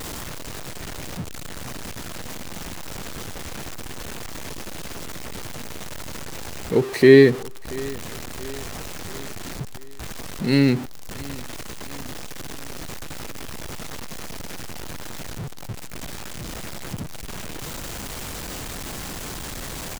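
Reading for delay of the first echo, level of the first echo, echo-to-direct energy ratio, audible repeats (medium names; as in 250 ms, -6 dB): 681 ms, -20.5 dB, -19.0 dB, 3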